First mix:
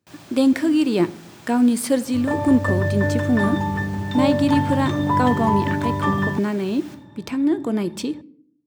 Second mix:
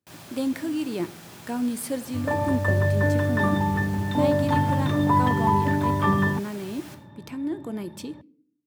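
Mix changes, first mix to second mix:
speech −10.0 dB
second sound: add high-frequency loss of the air 130 metres
master: add parametric band 12,000 Hz +9 dB 0.53 octaves

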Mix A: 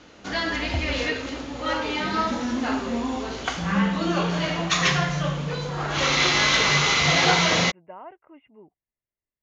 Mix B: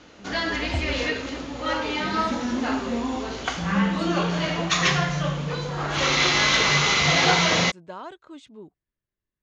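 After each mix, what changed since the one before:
speech: remove Chebyshev low-pass with heavy ripple 2,900 Hz, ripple 9 dB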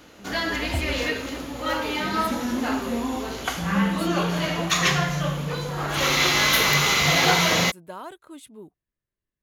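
master: remove Butterworth low-pass 6,700 Hz 36 dB per octave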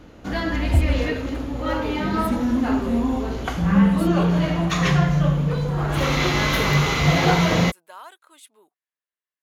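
speech: add high-pass filter 880 Hz 12 dB per octave
background: add spectral tilt −3 dB per octave

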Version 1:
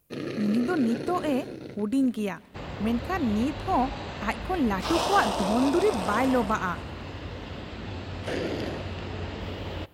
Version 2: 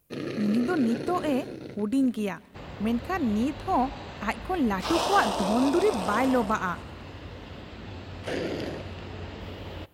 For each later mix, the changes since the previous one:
second sound −4.0 dB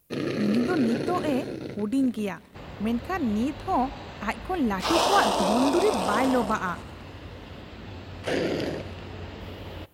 first sound +4.5 dB

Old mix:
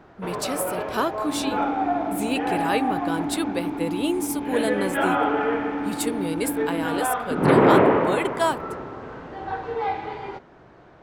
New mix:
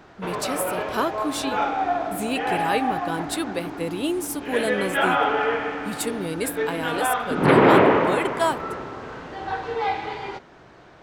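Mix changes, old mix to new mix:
first sound: add high-shelf EQ 2,200 Hz +11 dB
second sound −7.5 dB

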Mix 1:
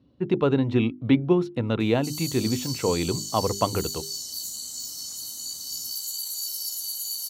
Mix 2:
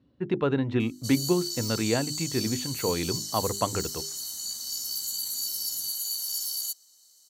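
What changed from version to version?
speech −4.0 dB
background: entry −1.00 s
master: add parametric band 1,700 Hz +6.5 dB 0.59 octaves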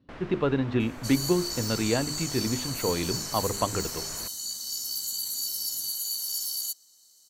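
first sound: unmuted
second sound: remove high-pass filter 240 Hz 6 dB per octave

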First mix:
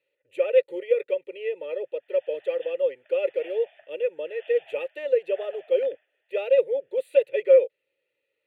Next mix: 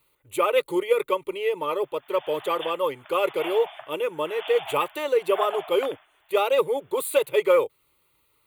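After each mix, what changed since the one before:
speech −4.5 dB
master: remove formant filter e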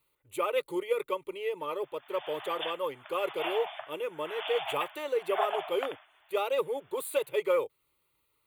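speech −8.0 dB

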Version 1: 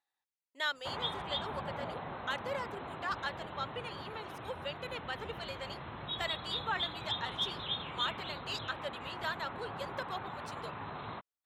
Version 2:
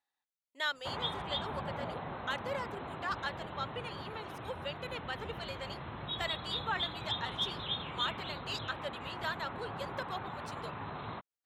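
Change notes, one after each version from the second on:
background: add low-shelf EQ 320 Hz +3 dB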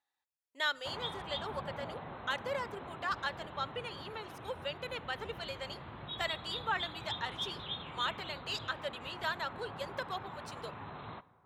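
background −6.5 dB
reverb: on, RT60 2.6 s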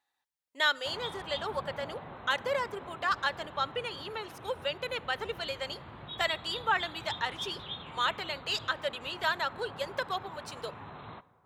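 speech +6.0 dB

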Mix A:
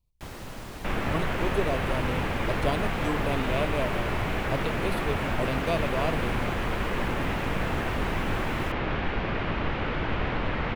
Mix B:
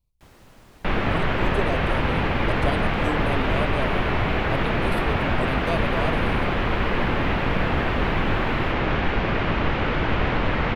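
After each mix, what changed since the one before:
first sound −11.0 dB
second sound +6.0 dB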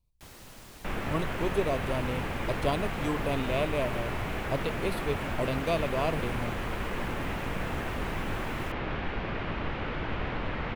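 first sound: add high-shelf EQ 3,300 Hz +10 dB
second sound −10.5 dB

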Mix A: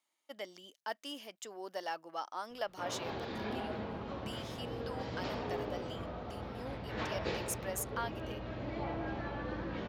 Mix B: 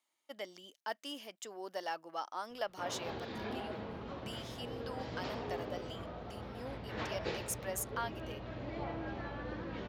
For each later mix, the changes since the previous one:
background: send −7.0 dB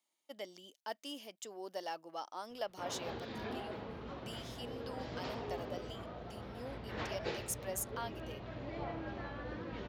speech: add parametric band 1,500 Hz −6.5 dB 1.4 octaves
reverb: off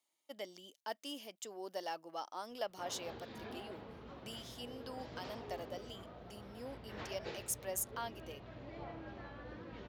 background −6.0 dB
master: add high-shelf EQ 12,000 Hz +4 dB

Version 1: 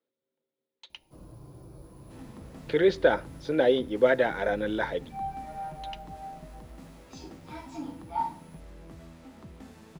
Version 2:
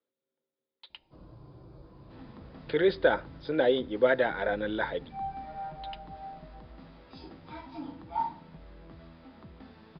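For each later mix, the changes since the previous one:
master: add Chebyshev low-pass with heavy ripple 5,000 Hz, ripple 3 dB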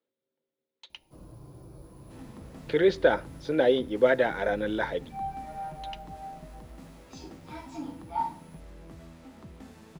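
master: remove Chebyshev low-pass with heavy ripple 5,000 Hz, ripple 3 dB

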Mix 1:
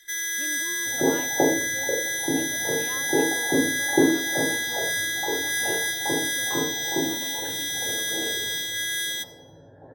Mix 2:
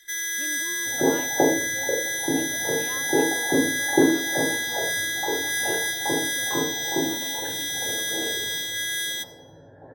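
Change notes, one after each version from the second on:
second sound: remove high-frequency loss of the air 460 metres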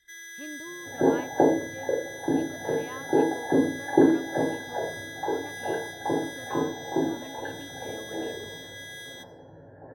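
first sound −11.0 dB
master: add high-shelf EQ 4,800 Hz −10 dB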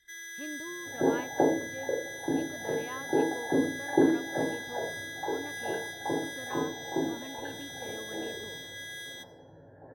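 second sound −4.5 dB

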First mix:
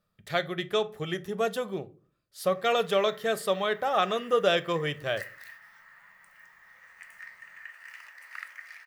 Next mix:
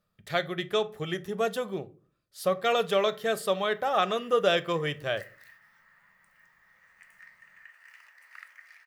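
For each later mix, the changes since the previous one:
background −7.0 dB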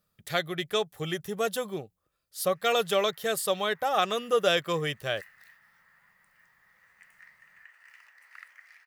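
speech: add high-shelf EQ 5,600 Hz +12 dB
reverb: off

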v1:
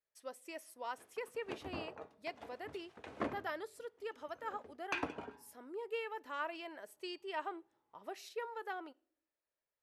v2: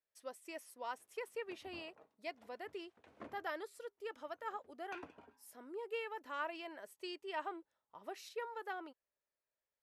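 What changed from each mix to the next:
background −11.5 dB
reverb: off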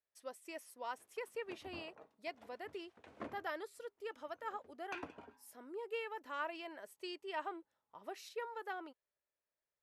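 background +5.0 dB

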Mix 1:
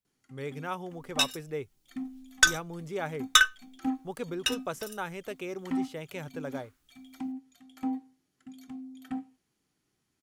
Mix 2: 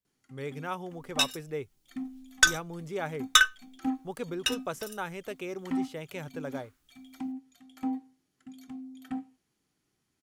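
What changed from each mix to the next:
nothing changed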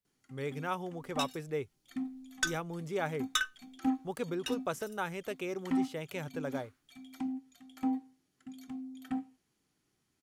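second sound −11.5 dB

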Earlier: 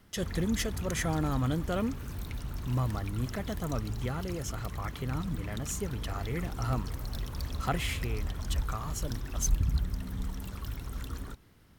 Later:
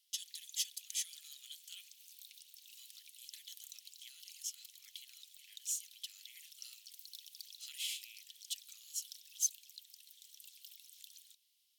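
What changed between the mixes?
background −3.5 dB
master: add Butterworth high-pass 3,000 Hz 36 dB per octave

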